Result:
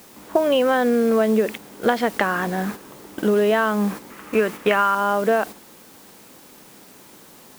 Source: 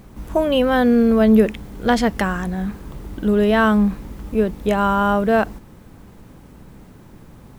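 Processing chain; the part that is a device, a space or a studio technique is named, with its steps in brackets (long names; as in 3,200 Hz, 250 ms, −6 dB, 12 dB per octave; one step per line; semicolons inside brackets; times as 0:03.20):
0:04.10–0:04.95: flat-topped bell 1,800 Hz +9.5 dB
baby monitor (band-pass filter 330–3,300 Hz; downward compressor 12 to 1, threshold −22 dBFS, peak gain reduction 14 dB; white noise bed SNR 20 dB; noise gate −37 dBFS, range −7 dB)
level +7.5 dB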